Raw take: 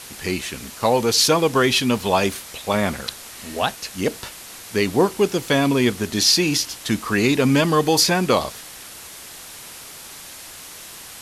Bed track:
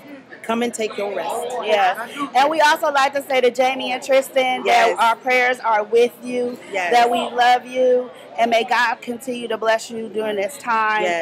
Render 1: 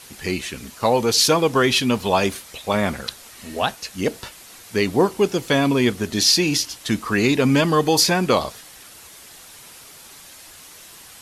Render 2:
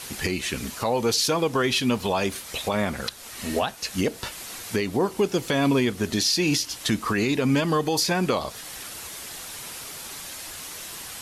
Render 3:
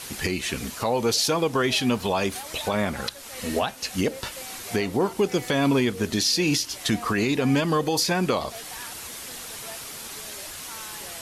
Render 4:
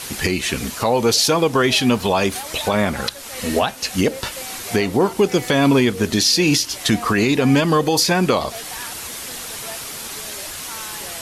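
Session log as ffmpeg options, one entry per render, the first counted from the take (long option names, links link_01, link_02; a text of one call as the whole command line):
ffmpeg -i in.wav -af "afftdn=noise_reduction=6:noise_floor=-39" out.wav
ffmpeg -i in.wav -filter_complex "[0:a]asplit=2[link_01][link_02];[link_02]acompressor=threshold=-26dB:ratio=6,volume=-0.5dB[link_03];[link_01][link_03]amix=inputs=2:normalize=0,alimiter=limit=-13dB:level=0:latency=1:release=357" out.wav
ffmpeg -i in.wav -i bed.wav -filter_complex "[1:a]volume=-26.5dB[link_01];[0:a][link_01]amix=inputs=2:normalize=0" out.wav
ffmpeg -i in.wav -af "volume=6.5dB" out.wav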